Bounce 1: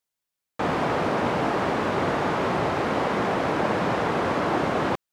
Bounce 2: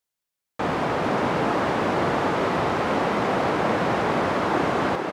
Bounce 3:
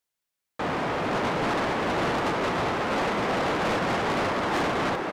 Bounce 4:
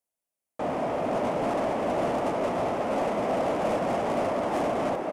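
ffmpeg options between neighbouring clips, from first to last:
ffmpeg -i in.wav -filter_complex "[0:a]asplit=9[link_01][link_02][link_03][link_04][link_05][link_06][link_07][link_08][link_09];[link_02]adelay=446,afreqshift=36,volume=-6dB[link_10];[link_03]adelay=892,afreqshift=72,volume=-10.3dB[link_11];[link_04]adelay=1338,afreqshift=108,volume=-14.6dB[link_12];[link_05]adelay=1784,afreqshift=144,volume=-18.9dB[link_13];[link_06]adelay=2230,afreqshift=180,volume=-23.2dB[link_14];[link_07]adelay=2676,afreqshift=216,volume=-27.5dB[link_15];[link_08]adelay=3122,afreqshift=252,volume=-31.8dB[link_16];[link_09]adelay=3568,afreqshift=288,volume=-36.1dB[link_17];[link_01][link_10][link_11][link_12][link_13][link_14][link_15][link_16][link_17]amix=inputs=9:normalize=0" out.wav
ffmpeg -i in.wav -af "equalizer=frequency=2000:width=0.94:gain=2,agate=range=-8dB:threshold=-21dB:ratio=16:detection=peak,asoftclip=type=tanh:threshold=-30.5dB,volume=7.5dB" out.wav
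ffmpeg -i in.wav -af "equalizer=frequency=250:width_type=o:width=0.67:gain=6,equalizer=frequency=630:width_type=o:width=0.67:gain=11,equalizer=frequency=1600:width_type=o:width=0.67:gain=-5,equalizer=frequency=4000:width_type=o:width=0.67:gain=-7,equalizer=frequency=10000:width_type=o:width=0.67:gain=6,volume=-6dB" out.wav

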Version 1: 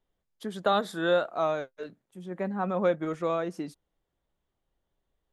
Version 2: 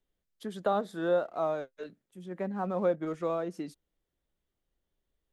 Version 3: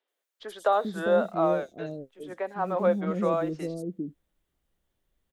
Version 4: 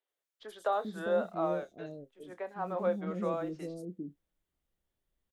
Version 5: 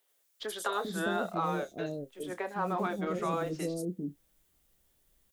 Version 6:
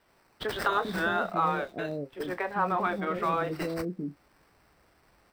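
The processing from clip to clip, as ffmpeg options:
ffmpeg -i in.wav -filter_complex "[0:a]equalizer=frequency=120:width=1.6:gain=-3,acrossover=split=700|1100[link_01][link_02][link_03];[link_02]aeval=exprs='sgn(val(0))*max(abs(val(0))-0.00119,0)':channel_layout=same[link_04];[link_03]acompressor=threshold=-46dB:ratio=4[link_05];[link_01][link_04][link_05]amix=inputs=3:normalize=0,volume=-2dB" out.wav
ffmpeg -i in.wav -filter_complex "[0:a]acrossover=split=400|4900[link_01][link_02][link_03];[link_03]adelay=80[link_04];[link_01]adelay=400[link_05];[link_05][link_02][link_04]amix=inputs=3:normalize=0,volume=6.5dB" out.wav
ffmpeg -i in.wav -filter_complex "[0:a]asplit=2[link_01][link_02];[link_02]adelay=28,volume=-13.5dB[link_03];[link_01][link_03]amix=inputs=2:normalize=0,volume=-7.5dB" out.wav
ffmpeg -i in.wav -filter_complex "[0:a]afftfilt=real='re*lt(hypot(re,im),0.141)':imag='im*lt(hypot(re,im),0.141)':win_size=1024:overlap=0.75,highshelf=frequency=5200:gain=11,asplit=2[link_01][link_02];[link_02]acompressor=threshold=-47dB:ratio=6,volume=2dB[link_03];[link_01][link_03]amix=inputs=2:normalize=0,volume=3.5dB" out.wav
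ffmpeg -i in.wav -filter_complex "[0:a]highpass=44,acrossover=split=800|3700[link_01][link_02][link_03];[link_01]alimiter=level_in=10dB:limit=-24dB:level=0:latency=1:release=281,volume=-10dB[link_04];[link_03]acrusher=samples=13:mix=1:aa=0.000001[link_05];[link_04][link_02][link_05]amix=inputs=3:normalize=0,volume=7.5dB" out.wav

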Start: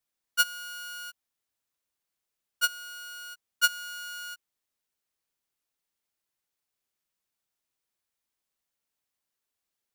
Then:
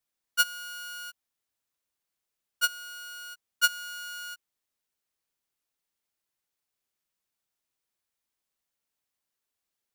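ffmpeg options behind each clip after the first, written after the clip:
ffmpeg -i in.wav -af anull out.wav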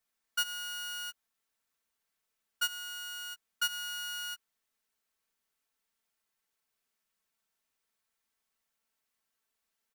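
ffmpeg -i in.wav -af "aecho=1:1:4.5:0.51,alimiter=limit=-23.5dB:level=0:latency=1:release=87,equalizer=frequency=1500:width=0.93:gain=4" out.wav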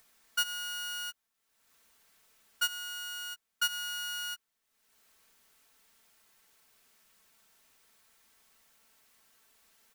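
ffmpeg -i in.wav -af "acompressor=mode=upward:threshold=-53dB:ratio=2.5,volume=1.5dB" out.wav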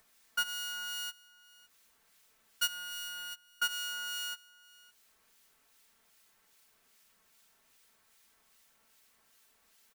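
ffmpeg -i in.wav -filter_complex "[0:a]acrossover=split=2000[link_01][link_02];[link_01]aeval=exprs='val(0)*(1-0.5/2+0.5/2*cos(2*PI*2.5*n/s))':channel_layout=same[link_03];[link_02]aeval=exprs='val(0)*(1-0.5/2-0.5/2*cos(2*PI*2.5*n/s))':channel_layout=same[link_04];[link_03][link_04]amix=inputs=2:normalize=0,asplit=2[link_05][link_06];[link_06]acrusher=bits=2:mode=log:mix=0:aa=0.000001,volume=-8dB[link_07];[link_05][link_07]amix=inputs=2:normalize=0,aecho=1:1:560:0.0794,volume=-2dB" out.wav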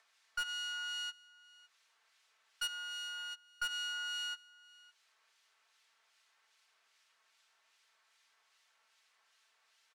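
ffmpeg -i in.wav -af "highpass=800,lowpass=5200,asoftclip=type=hard:threshold=-32dB" out.wav

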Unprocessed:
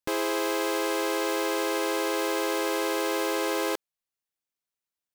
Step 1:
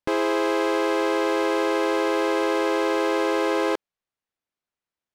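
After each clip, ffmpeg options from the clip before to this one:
ffmpeg -i in.wav -af "aemphasis=mode=reproduction:type=75fm,volume=5dB" out.wav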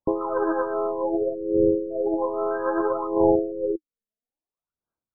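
ffmpeg -i in.wav -af "aphaser=in_gain=1:out_gain=1:delay=4.6:decay=0.66:speed=0.61:type=sinusoidal,aeval=exprs='0.631*(cos(1*acos(clip(val(0)/0.631,-1,1)))-cos(1*PI/2))+0.126*(cos(2*acos(clip(val(0)/0.631,-1,1)))-cos(2*PI/2))+0.0447*(cos(6*acos(clip(val(0)/0.631,-1,1)))-cos(6*PI/2))+0.0224*(cos(7*acos(clip(val(0)/0.631,-1,1)))-cos(7*PI/2))+0.0501*(cos(8*acos(clip(val(0)/0.631,-1,1)))-cos(8*PI/2))':channel_layout=same,afftfilt=real='re*lt(b*sr/1024,540*pow(1700/540,0.5+0.5*sin(2*PI*0.46*pts/sr)))':imag='im*lt(b*sr/1024,540*pow(1700/540,0.5+0.5*sin(2*PI*0.46*pts/sr)))':win_size=1024:overlap=0.75,volume=-2.5dB" out.wav

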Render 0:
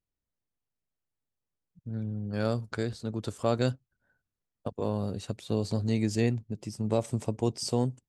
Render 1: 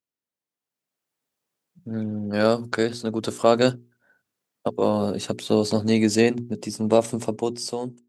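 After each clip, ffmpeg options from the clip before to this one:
ffmpeg -i in.wav -af "highpass=210,bandreject=frequency=60:width_type=h:width=6,bandreject=frequency=120:width_type=h:width=6,bandreject=frequency=180:width_type=h:width=6,bandreject=frequency=240:width_type=h:width=6,bandreject=frequency=300:width_type=h:width=6,bandreject=frequency=360:width_type=h:width=6,bandreject=frequency=420:width_type=h:width=6,dynaudnorm=framelen=140:gausssize=13:maxgain=12dB" out.wav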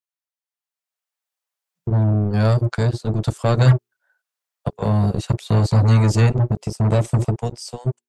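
ffmpeg -i in.wav -filter_complex "[0:a]lowshelf=frequency=190:width_type=q:width=3:gain=14,acrossover=split=530|5100[link_01][link_02][link_03];[link_01]acrusher=bits=2:mix=0:aa=0.5[link_04];[link_04][link_02][link_03]amix=inputs=3:normalize=0,volume=-3dB" out.wav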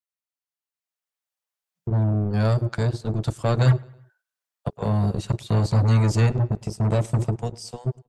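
ffmpeg -i in.wav -filter_complex "[0:a]asplit=2[link_01][link_02];[link_02]adelay=107,lowpass=frequency=4700:poles=1,volume=-23dB,asplit=2[link_03][link_04];[link_04]adelay=107,lowpass=frequency=4700:poles=1,volume=0.49,asplit=2[link_05][link_06];[link_06]adelay=107,lowpass=frequency=4700:poles=1,volume=0.49[link_07];[link_01][link_03][link_05][link_07]amix=inputs=4:normalize=0,volume=-4dB" out.wav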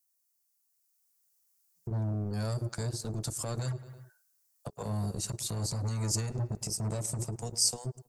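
ffmpeg -i in.wav -af "acompressor=threshold=-26dB:ratio=3,alimiter=level_in=3dB:limit=-24dB:level=0:latency=1:release=168,volume=-3dB,aexciter=amount=6.6:drive=4:freq=4800" out.wav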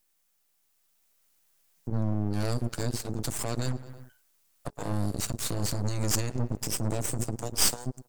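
ffmpeg -i in.wav -af "aeval=exprs='max(val(0),0)':channel_layout=same,volume=7.5dB" out.wav

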